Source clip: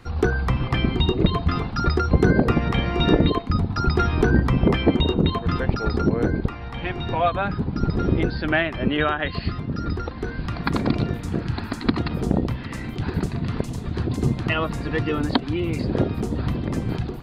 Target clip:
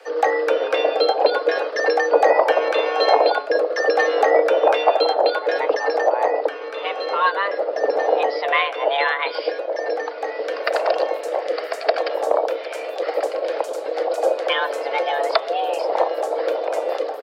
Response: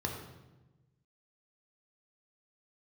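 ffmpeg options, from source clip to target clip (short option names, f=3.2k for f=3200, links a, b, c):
-filter_complex "[0:a]afreqshift=400,asplit=2[a][b];[b]asetrate=29433,aresample=44100,atempo=1.49831,volume=-17dB[c];[a][c]amix=inputs=2:normalize=0,bandreject=f=143.5:t=h:w=4,bandreject=f=287:t=h:w=4,bandreject=f=430.5:t=h:w=4,bandreject=f=574:t=h:w=4,bandreject=f=717.5:t=h:w=4,bandreject=f=861:t=h:w=4,bandreject=f=1.0045k:t=h:w=4,bandreject=f=1.148k:t=h:w=4,bandreject=f=1.2915k:t=h:w=4,bandreject=f=1.435k:t=h:w=4,bandreject=f=1.5785k:t=h:w=4,bandreject=f=1.722k:t=h:w=4,bandreject=f=1.8655k:t=h:w=4,bandreject=f=2.009k:t=h:w=4,bandreject=f=2.1525k:t=h:w=4,bandreject=f=2.296k:t=h:w=4,bandreject=f=2.4395k:t=h:w=4,bandreject=f=2.583k:t=h:w=4,bandreject=f=2.7265k:t=h:w=4,bandreject=f=2.87k:t=h:w=4,bandreject=f=3.0135k:t=h:w=4,bandreject=f=3.157k:t=h:w=4,bandreject=f=3.3005k:t=h:w=4,bandreject=f=3.444k:t=h:w=4,bandreject=f=3.5875k:t=h:w=4,bandreject=f=3.731k:t=h:w=4,volume=2dB"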